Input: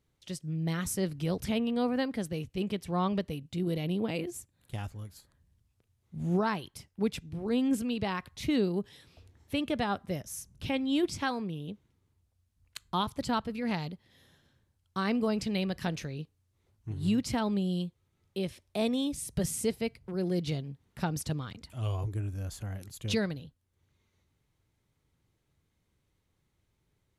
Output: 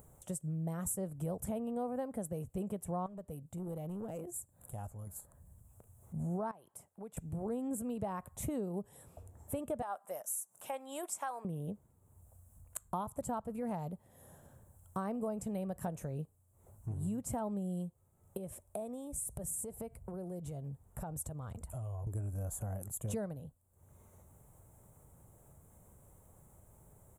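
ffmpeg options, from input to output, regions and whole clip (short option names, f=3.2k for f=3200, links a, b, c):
-filter_complex "[0:a]asettb=1/sr,asplit=3[a][b][c];[a]atrim=end=3.064[d];[b]atrim=start=3.06:end=5.07,asetpts=PTS-STARTPTS,afade=t=in:d=0.004:c=qsin,afade=t=out:st=2.006:d=0.004:c=qsin,acompressor=threshold=-59dB:ratio=1.5:attack=3.2:release=140:knee=1:detection=peak,aeval=exprs='clip(val(0),-1,0.0126)':c=same[e];[c]atrim=start=5.066[f];[d][e]acrossfade=d=0.004:c1=hsin:c2=qsin[g];[g][f]acrossfade=d=0.004:c1=qsin:c2=hsin,asettb=1/sr,asplit=3[h][i][j];[h]atrim=end=6.514[k];[i]atrim=start=6.51:end=7.17,asetpts=PTS-STARTPTS,afade=t=in:d=0.004:c=qsin,afade=t=out:st=0.656:d=0.004:c=qsin,highpass=f=500:p=1,highshelf=f=4.9k:g=-6.5,acompressor=threshold=-53dB:ratio=2.5:attack=3.2:release=140:knee=1:detection=peak[l];[j]atrim=start=7.166[m];[k][l]acrossfade=d=0.004:c1=hsin:c2=qsin[n];[n][m]acrossfade=d=0.004:c1=qsin:c2=hsin,asettb=1/sr,asplit=3[o][p][q];[o]atrim=end=9.824[r];[p]atrim=start=9.82:end=11.45,asetpts=PTS-STARTPTS,afade=t=in:d=0.004:c=qsin,afade=t=out:st=1.626:d=0.004:c=qsin,highpass=850,acompressor=mode=upward:threshold=-51dB:ratio=2.5:attack=3.2:release=140:knee=2.83:detection=peak[s];[q]atrim=start=11.446[t];[r][s]acrossfade=d=0.004:c1=hsin:c2=qsin[u];[u][t]acrossfade=d=0.004:c1=qsin:c2=hsin,asettb=1/sr,asplit=3[v][w][x];[v]atrim=end=18.374[y];[w]atrim=start=18.37:end=22.07,asetpts=PTS-STARTPTS,afade=t=in:d=0.004:c=qsin,afade=t=out:st=3.696:d=0.004:c=qsin,asubboost=boost=5:cutoff=88,acompressor=threshold=-40dB:ratio=12:attack=3.2:release=140:knee=1:detection=peak[z];[x]atrim=start=22.066[aa];[y][z]acrossfade=d=0.004:c1=hsin:c2=qsin[ab];[ab][aa]acrossfade=d=0.004:c1=qsin:c2=hsin,acompressor=mode=upward:threshold=-51dB:ratio=2.5,firequalizer=gain_entry='entry(200,0);entry(300,-5);entry(610,7);entry(2000,-14);entry(4600,-23);entry(7600,7)':delay=0.05:min_phase=1,acompressor=threshold=-39dB:ratio=4,volume=2.5dB"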